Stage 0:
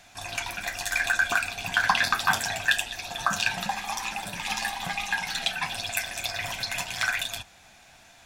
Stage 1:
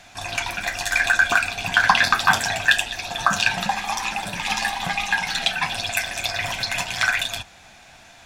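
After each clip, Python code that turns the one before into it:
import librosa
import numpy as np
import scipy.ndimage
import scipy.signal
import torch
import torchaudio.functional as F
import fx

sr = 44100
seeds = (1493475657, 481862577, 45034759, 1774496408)

y = fx.high_shelf(x, sr, hz=10000.0, db=-9.0)
y = y * 10.0 ** (6.5 / 20.0)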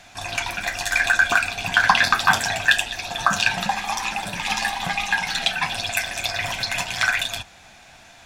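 y = x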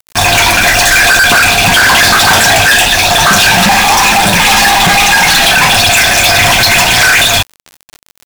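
y = fx.fuzz(x, sr, gain_db=39.0, gate_db=-39.0)
y = fx.quant_dither(y, sr, seeds[0], bits=6, dither='none')
y = y * 10.0 ** (8.0 / 20.0)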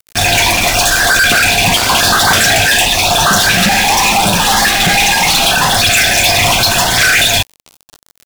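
y = fx.filter_lfo_notch(x, sr, shape='saw_up', hz=0.86, low_hz=830.0, high_hz=2700.0, q=1.7)
y = y * 10.0 ** (-2.0 / 20.0)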